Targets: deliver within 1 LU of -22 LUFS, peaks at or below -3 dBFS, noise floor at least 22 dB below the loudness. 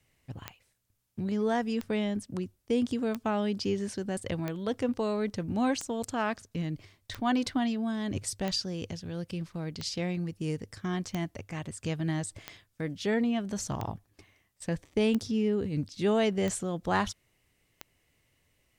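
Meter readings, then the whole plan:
clicks 14; loudness -31.5 LUFS; peak -14.0 dBFS; loudness target -22.0 LUFS
-> de-click; gain +9.5 dB

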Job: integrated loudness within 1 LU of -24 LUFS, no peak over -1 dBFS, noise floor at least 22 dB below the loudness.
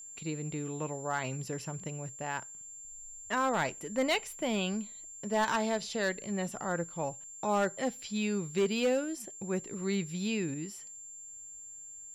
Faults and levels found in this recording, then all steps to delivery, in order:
clipped 0.5%; flat tops at -22.5 dBFS; steady tone 7300 Hz; tone level -45 dBFS; loudness -33.5 LUFS; peak -22.5 dBFS; loudness target -24.0 LUFS
-> clip repair -22.5 dBFS; notch 7300 Hz, Q 30; gain +9.5 dB

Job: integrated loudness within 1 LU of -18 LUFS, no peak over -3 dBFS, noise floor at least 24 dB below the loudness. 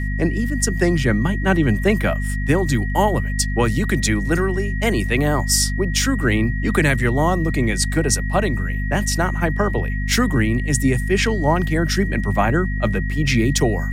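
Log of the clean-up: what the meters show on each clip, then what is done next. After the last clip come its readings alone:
hum 50 Hz; harmonics up to 250 Hz; hum level -20 dBFS; steady tone 1900 Hz; tone level -30 dBFS; loudness -19.5 LUFS; peak -4.5 dBFS; loudness target -18.0 LUFS
-> notches 50/100/150/200/250 Hz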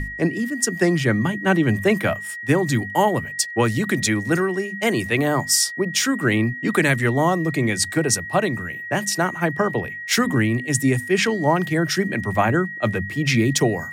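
hum none; steady tone 1900 Hz; tone level -30 dBFS
-> notch 1900 Hz, Q 30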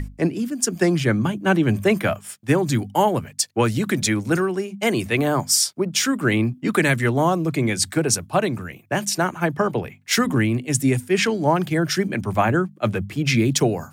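steady tone none; loudness -21.0 LUFS; peak -4.5 dBFS; loudness target -18.0 LUFS
-> gain +3 dB; limiter -3 dBFS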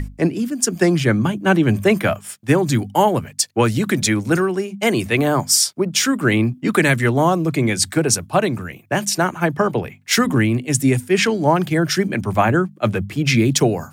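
loudness -18.0 LUFS; peak -3.0 dBFS; noise floor -45 dBFS

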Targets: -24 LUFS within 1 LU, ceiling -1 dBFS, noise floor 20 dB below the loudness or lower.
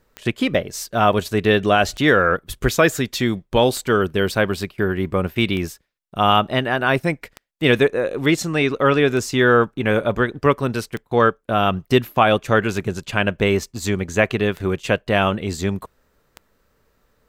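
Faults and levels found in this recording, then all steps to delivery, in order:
clicks 10; loudness -19.5 LUFS; peak -3.5 dBFS; loudness target -24.0 LUFS
-> de-click; gain -4.5 dB

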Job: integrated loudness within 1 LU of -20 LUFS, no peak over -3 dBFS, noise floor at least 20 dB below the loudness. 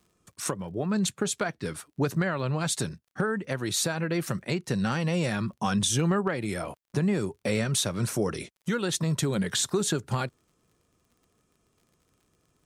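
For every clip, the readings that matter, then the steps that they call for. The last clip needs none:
ticks 40/s; loudness -28.5 LUFS; peak -14.5 dBFS; loudness target -20.0 LUFS
-> de-click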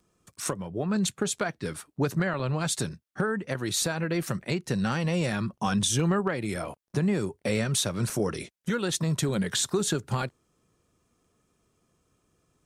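ticks 0.40/s; loudness -28.5 LUFS; peak -14.5 dBFS; loudness target -20.0 LUFS
-> gain +8.5 dB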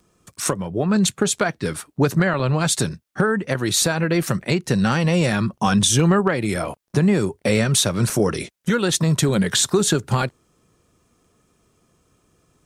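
loudness -20.0 LUFS; peak -6.0 dBFS; noise floor -65 dBFS

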